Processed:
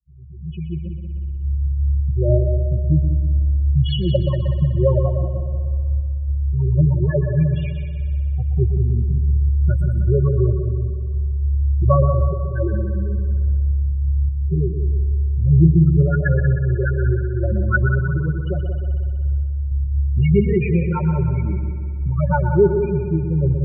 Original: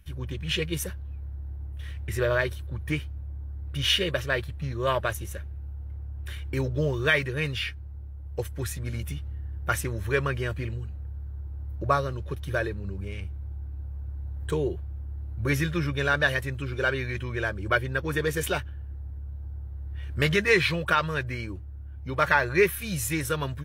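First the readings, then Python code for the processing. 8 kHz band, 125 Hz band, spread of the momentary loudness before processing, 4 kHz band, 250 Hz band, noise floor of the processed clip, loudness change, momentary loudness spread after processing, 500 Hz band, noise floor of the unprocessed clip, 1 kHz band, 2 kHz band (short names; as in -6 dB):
under -35 dB, +14.5 dB, 15 LU, n/a, +11.0 dB, -26 dBFS, +9.0 dB, 8 LU, +5.5 dB, -38 dBFS, -0.5 dB, -4.5 dB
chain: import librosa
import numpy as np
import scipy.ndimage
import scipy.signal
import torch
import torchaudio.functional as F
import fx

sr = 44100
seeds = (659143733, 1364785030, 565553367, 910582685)

y = fx.fade_in_head(x, sr, length_s=1.66)
y = scipy.signal.sosfilt(scipy.signal.butter(4, 41.0, 'highpass', fs=sr, output='sos'), y)
y = fx.riaa(y, sr, side='playback')
y = fx.notch(y, sr, hz=1900.0, q=13.0)
y = y + 0.95 * np.pad(y, (int(5.4 * sr / 1000.0), 0))[:len(y)]
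y = fx.dynamic_eq(y, sr, hz=180.0, q=1.3, threshold_db=-26.0, ratio=4.0, max_db=-4)
y = fx.tremolo_random(y, sr, seeds[0], hz=3.5, depth_pct=55)
y = fx.comb_fb(y, sr, f0_hz=81.0, decay_s=0.73, harmonics='all', damping=0.0, mix_pct=30)
y = fx.phaser_stages(y, sr, stages=6, low_hz=380.0, high_hz=3400.0, hz=2.7, feedback_pct=30)
y = fx.spec_topn(y, sr, count=8)
y = fx.echo_heads(y, sr, ms=62, heads='second and third', feedback_pct=58, wet_db=-9)
y = y * 10.0 ** (7.0 / 20.0)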